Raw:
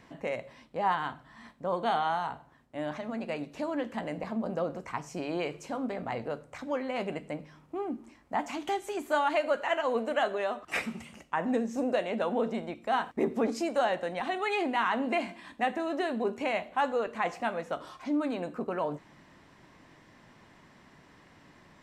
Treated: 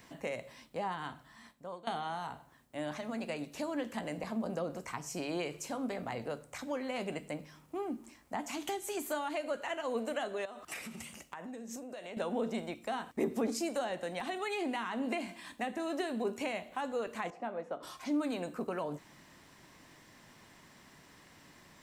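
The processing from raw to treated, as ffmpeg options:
ffmpeg -i in.wav -filter_complex "[0:a]asettb=1/sr,asplit=3[link_01][link_02][link_03];[link_01]atrim=end=10.454[link_04];[link_02]atrim=start=10.45:end=12.17,asetpts=PTS-STARTPTS,afade=type=in:duration=0.004:curve=qsin,afade=type=out:start_time=1.716:duration=0.004:curve=qsin,acompressor=threshold=-38dB:ratio=12:attack=3.2:release=140:knee=1:detection=peak[link_05];[link_03]atrim=start=12.166[link_06];[link_04][link_05]acrossfade=duration=0.004:curve1=hsin:curve2=qsin[link_07];[link_07][link_06]acrossfade=duration=0.004:curve1=qsin:curve2=hsin,asettb=1/sr,asplit=3[link_08][link_09][link_10];[link_08]atrim=end=17.304[link_11];[link_09]atrim=start=17.3:end=17.83,asetpts=PTS-STARTPTS,afade=type=in:duration=0.004:curve=qsin,afade=type=out:start_time=0.526:duration=0.004:curve=qsin,bandpass=frequency=460:width_type=q:width=0.69[link_12];[link_10]atrim=start=17.826[link_13];[link_11][link_12]acrossfade=duration=0.004:curve1=hsin:curve2=qsin[link_14];[link_14][link_13]acrossfade=duration=0.004:curve1=qsin:curve2=hsin,asplit=2[link_15][link_16];[link_15]atrim=end=1.87,asetpts=PTS-STARTPTS,afade=type=out:start_time=1.1:duration=0.77:silence=0.11885[link_17];[link_16]atrim=start=1.87,asetpts=PTS-STARTPTS,afade=type=in:duration=0.004:curve=hsin:silence=0.11885[link_18];[link_17][link_18]concat=n=2:v=0:a=1,aemphasis=mode=production:type=75kf,acrossover=split=430[link_19][link_20];[link_20]acompressor=threshold=-34dB:ratio=4[link_21];[link_19][link_21]amix=inputs=2:normalize=0,volume=-3dB" out.wav

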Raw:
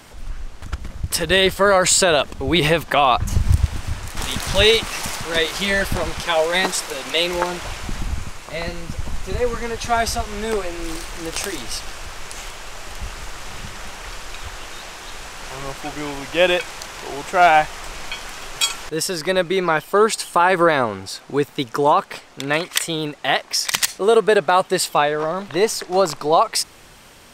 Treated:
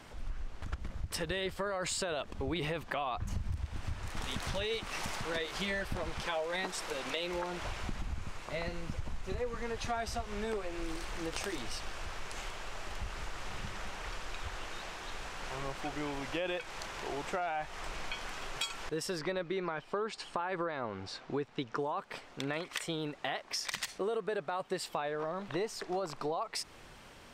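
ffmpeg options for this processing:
ffmpeg -i in.wav -filter_complex "[0:a]asettb=1/sr,asplit=3[link_01][link_02][link_03];[link_01]atrim=end=19.194[link_04];[link_02]atrim=start=19.19:end=21.79,asetpts=PTS-STARTPTS,afade=type=in:duration=0.004:curve=qsin,afade=type=out:start_time=2.596:duration=0.004:curve=qsin,lowpass=5500[link_05];[link_03]atrim=start=21.786[link_06];[link_04][link_05]acrossfade=duration=0.004:curve1=hsin:curve2=qsin[link_07];[link_07][link_06]acrossfade=duration=0.004:curve1=qsin:curve2=hsin,lowpass=frequency=3600:poles=1,alimiter=limit=-9.5dB:level=0:latency=1:release=10,acompressor=threshold=-26dB:ratio=5,volume=-7dB" out.wav

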